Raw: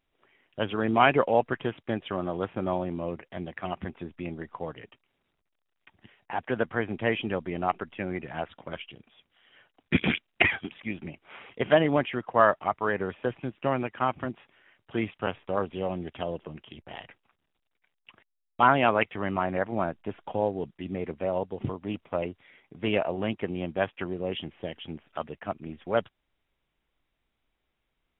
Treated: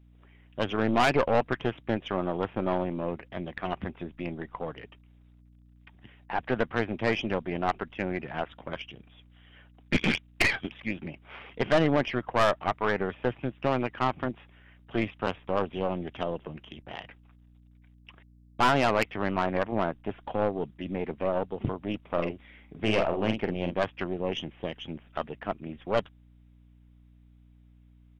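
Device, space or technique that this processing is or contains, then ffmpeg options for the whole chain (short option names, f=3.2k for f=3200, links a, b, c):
valve amplifier with mains hum: -filter_complex "[0:a]aeval=exprs='(tanh(11.2*val(0)+0.6)-tanh(0.6))/11.2':c=same,aeval=exprs='val(0)+0.00112*(sin(2*PI*60*n/s)+sin(2*PI*2*60*n/s)/2+sin(2*PI*3*60*n/s)/3+sin(2*PI*4*60*n/s)/4+sin(2*PI*5*60*n/s)/5)':c=same,asplit=3[a][b][c];[a]afade=t=out:st=22.08:d=0.02[d];[b]asplit=2[e][f];[f]adelay=46,volume=-5.5dB[g];[e][g]amix=inputs=2:normalize=0,afade=t=in:st=22.08:d=0.02,afade=t=out:st=23.73:d=0.02[h];[c]afade=t=in:st=23.73:d=0.02[i];[d][h][i]amix=inputs=3:normalize=0,volume=4dB"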